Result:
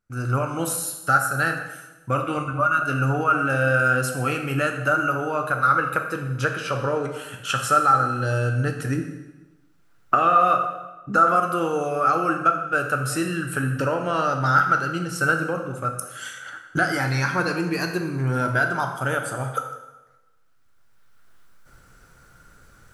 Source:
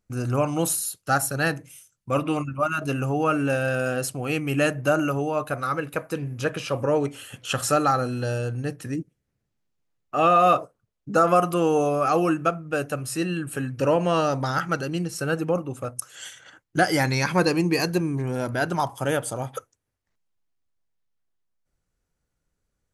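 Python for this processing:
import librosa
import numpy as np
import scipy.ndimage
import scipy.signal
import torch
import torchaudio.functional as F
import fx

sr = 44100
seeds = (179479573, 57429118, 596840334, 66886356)

y = fx.recorder_agc(x, sr, target_db=-10.5, rise_db_per_s=13.0, max_gain_db=30)
y = fx.peak_eq(y, sr, hz=1400.0, db=14.0, octaves=0.44)
y = fx.notch(y, sr, hz=6700.0, q=25.0)
y = fx.rev_plate(y, sr, seeds[0], rt60_s=1.1, hf_ratio=0.85, predelay_ms=0, drr_db=4.0)
y = y * 10.0 ** (-6.5 / 20.0)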